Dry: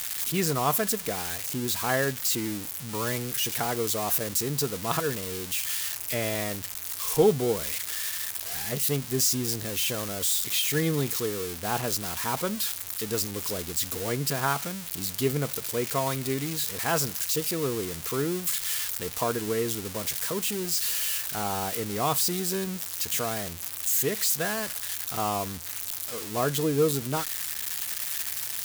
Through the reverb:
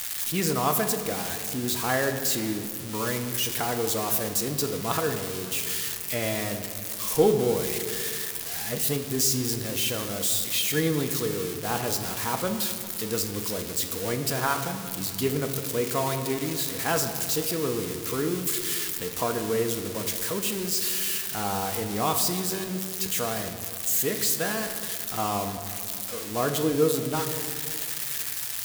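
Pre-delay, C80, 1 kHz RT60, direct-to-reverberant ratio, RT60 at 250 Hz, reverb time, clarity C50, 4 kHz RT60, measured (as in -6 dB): 4 ms, 9.5 dB, 2.0 s, 6.0 dB, 2.6 s, 2.3 s, 8.5 dB, 1.4 s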